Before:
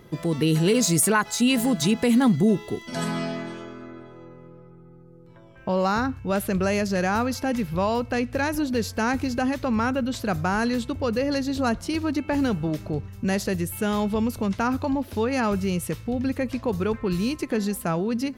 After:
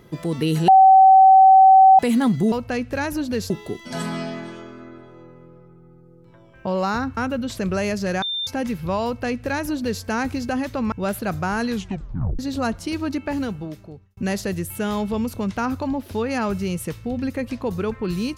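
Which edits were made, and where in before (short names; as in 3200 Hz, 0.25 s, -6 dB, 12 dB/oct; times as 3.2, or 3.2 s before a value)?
0.68–1.99 bleep 765 Hz -7 dBFS
6.19–6.46 swap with 9.81–10.21
7.11–7.36 bleep 3590 Hz -23 dBFS
7.94–8.92 copy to 2.52
10.71 tape stop 0.70 s
12.19–13.19 fade out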